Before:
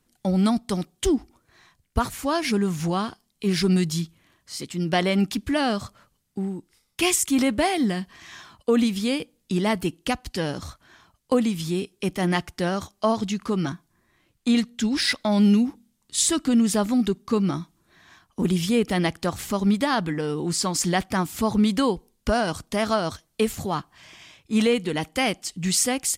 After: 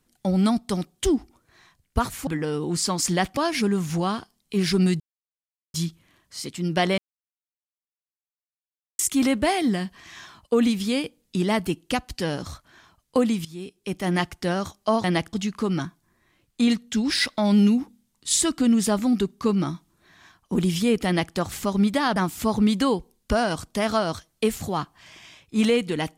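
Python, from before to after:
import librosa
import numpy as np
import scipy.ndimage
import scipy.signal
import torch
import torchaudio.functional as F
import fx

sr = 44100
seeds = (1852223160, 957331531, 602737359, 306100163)

y = fx.edit(x, sr, fx.insert_silence(at_s=3.9, length_s=0.74),
    fx.silence(start_s=5.14, length_s=2.01),
    fx.fade_in_from(start_s=11.61, length_s=0.74, floor_db=-17.0),
    fx.duplicate(start_s=18.93, length_s=0.29, to_s=13.2),
    fx.move(start_s=20.03, length_s=1.1, to_s=2.27), tone=tone)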